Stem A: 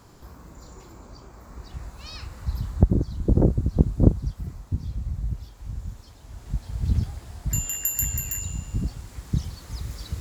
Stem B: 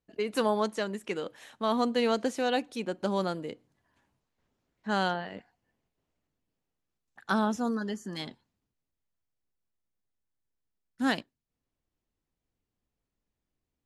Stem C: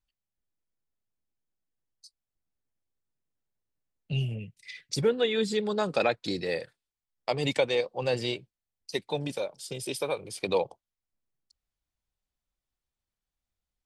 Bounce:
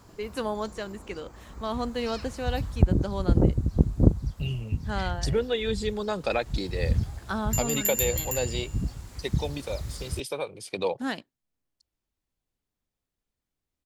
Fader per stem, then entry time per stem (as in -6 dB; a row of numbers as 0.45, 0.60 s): -2.0, -3.5, -1.5 dB; 0.00, 0.00, 0.30 s